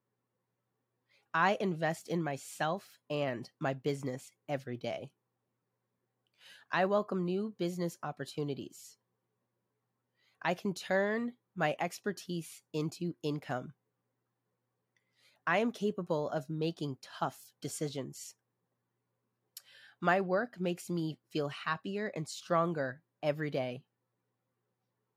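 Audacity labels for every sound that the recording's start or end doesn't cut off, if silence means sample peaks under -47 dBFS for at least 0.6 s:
1.340000	5.070000	sound
6.460000	8.900000	sound
10.420000	13.700000	sound
15.470000	18.310000	sound
19.570000	23.790000	sound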